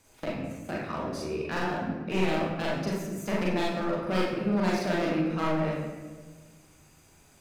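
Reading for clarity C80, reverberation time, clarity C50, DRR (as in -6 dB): 3.5 dB, 1.5 s, 1.5 dB, -4.5 dB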